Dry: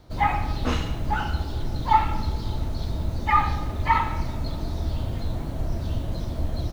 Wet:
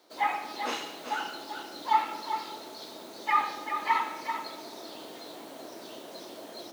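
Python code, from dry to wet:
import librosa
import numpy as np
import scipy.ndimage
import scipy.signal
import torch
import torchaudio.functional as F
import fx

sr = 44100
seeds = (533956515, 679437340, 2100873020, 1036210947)

p1 = fx.octave_divider(x, sr, octaves=2, level_db=0.0)
p2 = scipy.signal.sosfilt(scipy.signal.butter(4, 320.0, 'highpass', fs=sr, output='sos'), p1)
p3 = fx.high_shelf(p2, sr, hz=2800.0, db=7.0)
p4 = p3 + fx.echo_single(p3, sr, ms=389, db=-8.0, dry=0)
y = p4 * librosa.db_to_amplitude(-6.0)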